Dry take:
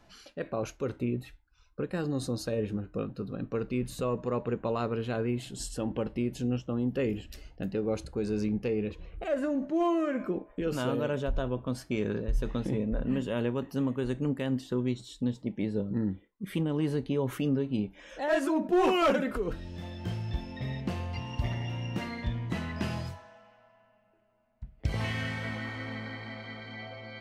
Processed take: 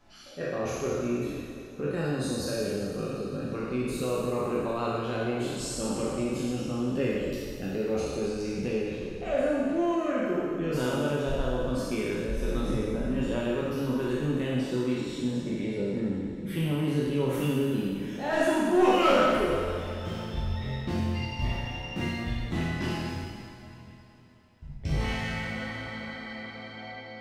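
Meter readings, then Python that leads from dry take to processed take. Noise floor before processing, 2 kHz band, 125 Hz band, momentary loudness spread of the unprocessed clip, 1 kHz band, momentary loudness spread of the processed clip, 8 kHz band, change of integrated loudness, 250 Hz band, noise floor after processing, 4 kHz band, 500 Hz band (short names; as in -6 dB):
-63 dBFS, +4.0 dB, +1.0 dB, 10 LU, +4.0 dB, 9 LU, +6.0 dB, +2.5 dB, +2.0 dB, -46 dBFS, +4.5 dB, +3.5 dB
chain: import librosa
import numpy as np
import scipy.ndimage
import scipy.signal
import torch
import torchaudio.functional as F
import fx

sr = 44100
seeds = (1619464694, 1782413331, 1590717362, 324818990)

y = fx.spec_trails(x, sr, decay_s=1.67)
y = fx.rev_double_slope(y, sr, seeds[0], early_s=0.59, late_s=3.9, knee_db=-15, drr_db=-1.5)
y = y * 10.0 ** (-4.5 / 20.0)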